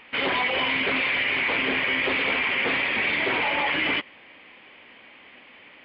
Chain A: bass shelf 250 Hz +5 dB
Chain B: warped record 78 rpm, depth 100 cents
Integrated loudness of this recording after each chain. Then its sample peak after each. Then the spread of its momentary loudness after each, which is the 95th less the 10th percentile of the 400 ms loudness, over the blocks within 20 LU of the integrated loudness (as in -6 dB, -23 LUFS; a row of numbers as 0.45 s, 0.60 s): -22.5 LUFS, -22.5 LUFS; -13.0 dBFS, -13.5 dBFS; 1 LU, 1 LU